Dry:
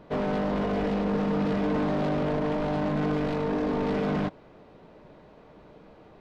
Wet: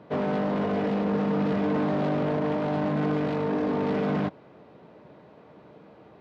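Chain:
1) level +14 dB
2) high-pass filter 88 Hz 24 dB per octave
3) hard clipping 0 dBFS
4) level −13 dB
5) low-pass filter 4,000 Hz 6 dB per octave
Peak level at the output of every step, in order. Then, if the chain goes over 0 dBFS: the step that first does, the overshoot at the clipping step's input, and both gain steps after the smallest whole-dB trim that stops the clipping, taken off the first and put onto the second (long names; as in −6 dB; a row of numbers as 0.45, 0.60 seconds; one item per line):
−7.5, −3.0, −3.0, −16.0, −16.0 dBFS
no step passes full scale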